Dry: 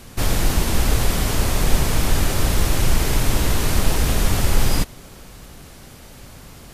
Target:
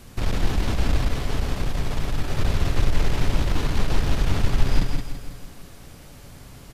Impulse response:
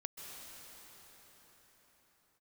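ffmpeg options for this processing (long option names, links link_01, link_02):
-filter_complex "[0:a]aeval=exprs='(tanh(3.98*val(0)+0.45)-tanh(0.45))/3.98':channel_layout=same,asettb=1/sr,asplit=3[link_01][link_02][link_03];[link_01]atrim=end=1.054[link_04];[link_02]atrim=start=1.05:end=2.39,asetpts=PTS-STARTPTS,afade=type=in:duration=0.004:curve=qsin,afade=type=out:start_time=1.336:duration=0.004:curve=qsin,acompressor=threshold=-19dB:ratio=6[link_05];[link_03]atrim=start=2.386[link_06];[link_04][link_05]acrossfade=duration=0.004:curve1=hsin:curve2=qsin[link_07];[link_07][link_06]acrossfade=duration=0.004:curve1=qsin:curve2=hsin,lowshelf=frequency=230:gain=3.5,asplit=2[link_08][link_09];[link_09]aecho=0:1:165|330|495|660|825|990:0.282|0.161|0.0916|0.0522|0.0298|0.017[link_10];[link_08][link_10]amix=inputs=2:normalize=0,acrossover=split=5400[link_11][link_12];[link_12]acompressor=threshold=-47dB:ratio=4:attack=1:release=60[link_13];[link_11][link_13]amix=inputs=2:normalize=0,asplit=2[link_14][link_15];[link_15]aecho=0:1:172:0.531[link_16];[link_14][link_16]amix=inputs=2:normalize=0,volume=-4dB"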